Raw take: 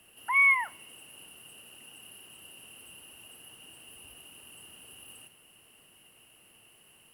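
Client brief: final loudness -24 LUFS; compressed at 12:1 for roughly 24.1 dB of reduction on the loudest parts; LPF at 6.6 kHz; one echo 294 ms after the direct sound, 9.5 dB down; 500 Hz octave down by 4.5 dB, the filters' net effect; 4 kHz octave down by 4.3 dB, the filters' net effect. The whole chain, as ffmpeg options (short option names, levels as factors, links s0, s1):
-af "lowpass=6600,equalizer=f=500:t=o:g=-6,equalizer=f=4000:t=o:g=-7.5,acompressor=threshold=0.00501:ratio=12,aecho=1:1:294:0.335,volume=28.2"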